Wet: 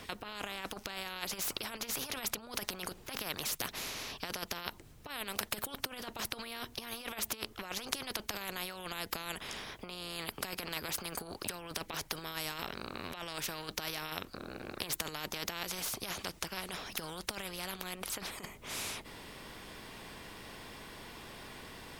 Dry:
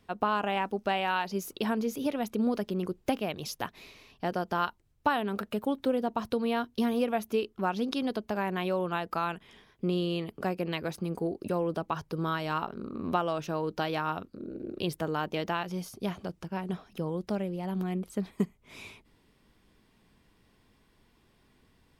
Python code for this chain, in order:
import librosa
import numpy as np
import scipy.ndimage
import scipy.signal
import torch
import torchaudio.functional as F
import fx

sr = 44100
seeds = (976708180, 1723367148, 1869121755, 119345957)

y = fx.over_compress(x, sr, threshold_db=-33.0, ratio=-0.5)
y = fx.spectral_comp(y, sr, ratio=4.0)
y = y * librosa.db_to_amplitude(1.0)